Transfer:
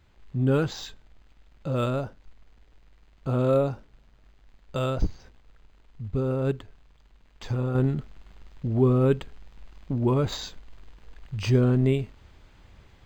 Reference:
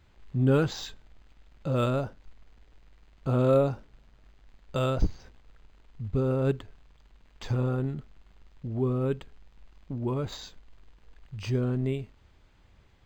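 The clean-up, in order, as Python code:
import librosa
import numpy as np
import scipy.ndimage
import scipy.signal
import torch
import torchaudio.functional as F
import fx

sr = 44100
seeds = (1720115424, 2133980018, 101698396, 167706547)

y = fx.fix_level(x, sr, at_s=7.75, step_db=-7.0)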